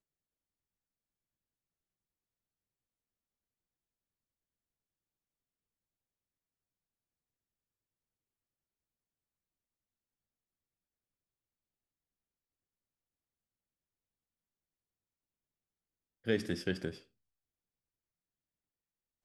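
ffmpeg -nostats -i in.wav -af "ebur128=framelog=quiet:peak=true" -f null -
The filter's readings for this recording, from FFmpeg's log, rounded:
Integrated loudness:
  I:         -36.6 LUFS
  Threshold: -47.4 LUFS
Loudness range:
  LRA:         2.3 LU
  Threshold: -61.8 LUFS
  LRA low:   -43.7 LUFS
  LRA high:  -41.4 LUFS
True peak:
  Peak:      -18.0 dBFS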